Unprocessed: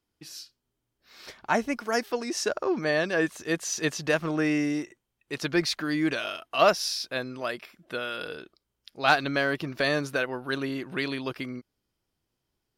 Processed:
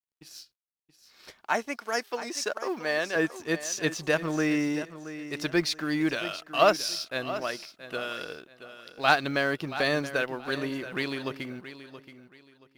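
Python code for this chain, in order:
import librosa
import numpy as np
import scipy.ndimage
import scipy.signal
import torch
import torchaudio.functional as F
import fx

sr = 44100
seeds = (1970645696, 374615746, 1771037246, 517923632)

y = fx.law_mismatch(x, sr, coded='A')
y = fx.highpass(y, sr, hz=530.0, slope=6, at=(1.41, 3.16))
y = fx.echo_feedback(y, sr, ms=676, feedback_pct=27, wet_db=-13.0)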